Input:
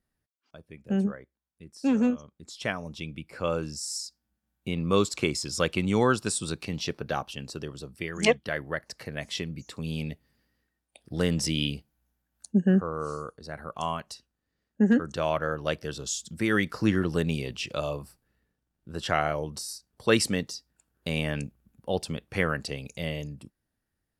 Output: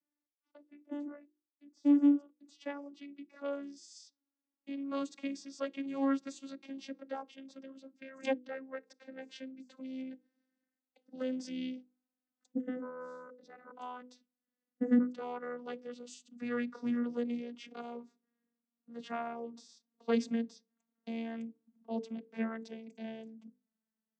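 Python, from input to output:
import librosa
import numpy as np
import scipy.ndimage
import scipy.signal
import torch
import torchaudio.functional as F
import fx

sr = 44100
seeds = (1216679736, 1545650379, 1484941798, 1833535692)

y = fx.vocoder_glide(x, sr, note=62, semitones=-5)
y = fx.hum_notches(y, sr, base_hz=50, count=10)
y = y * 10.0 ** (-6.5 / 20.0)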